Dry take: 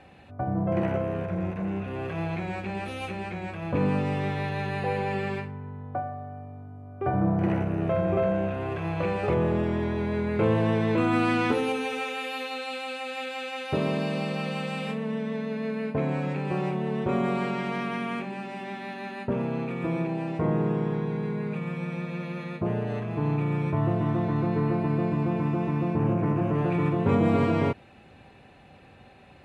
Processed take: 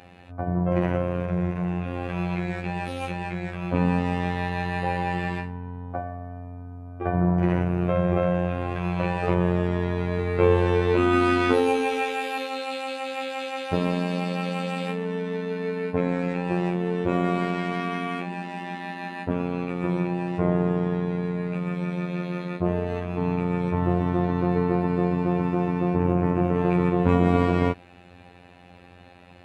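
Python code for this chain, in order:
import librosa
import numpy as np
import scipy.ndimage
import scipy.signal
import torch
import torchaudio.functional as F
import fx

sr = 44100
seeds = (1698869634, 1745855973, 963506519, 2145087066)

y = fx.robotise(x, sr, hz=88.6)
y = fx.doubler(y, sr, ms=20.0, db=-5.5, at=(10.17, 12.38))
y = y * librosa.db_to_amplitude(5.0)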